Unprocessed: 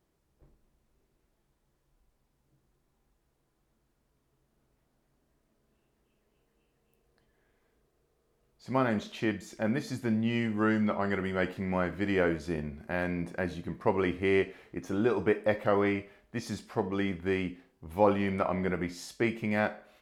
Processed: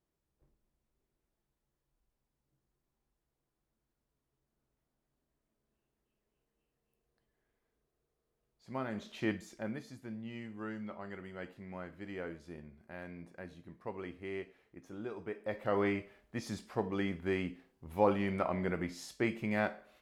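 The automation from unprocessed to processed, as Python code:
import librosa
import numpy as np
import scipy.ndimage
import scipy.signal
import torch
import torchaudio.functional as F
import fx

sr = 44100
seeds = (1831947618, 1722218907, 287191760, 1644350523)

y = fx.gain(x, sr, db=fx.line((8.89, -11.0), (9.31, -3.0), (9.96, -15.0), (15.3, -15.0), (15.81, -4.0)))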